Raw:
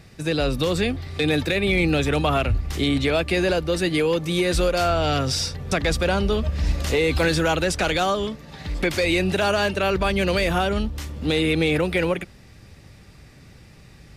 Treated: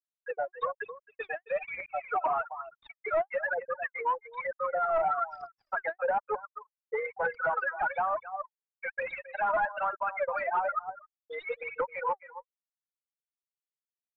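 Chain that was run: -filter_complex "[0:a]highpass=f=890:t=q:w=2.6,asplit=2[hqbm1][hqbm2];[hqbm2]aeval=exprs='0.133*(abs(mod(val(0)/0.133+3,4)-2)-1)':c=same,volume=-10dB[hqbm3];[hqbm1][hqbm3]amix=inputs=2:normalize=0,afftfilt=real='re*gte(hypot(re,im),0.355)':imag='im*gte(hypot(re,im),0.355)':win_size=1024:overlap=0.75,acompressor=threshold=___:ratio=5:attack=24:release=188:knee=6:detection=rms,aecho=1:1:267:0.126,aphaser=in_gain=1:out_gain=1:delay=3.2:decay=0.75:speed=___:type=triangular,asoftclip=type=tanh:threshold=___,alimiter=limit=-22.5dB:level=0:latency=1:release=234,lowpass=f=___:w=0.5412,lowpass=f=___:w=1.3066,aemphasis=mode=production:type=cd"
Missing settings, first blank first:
-20dB, 1.1, -17.5dB, 1700, 1700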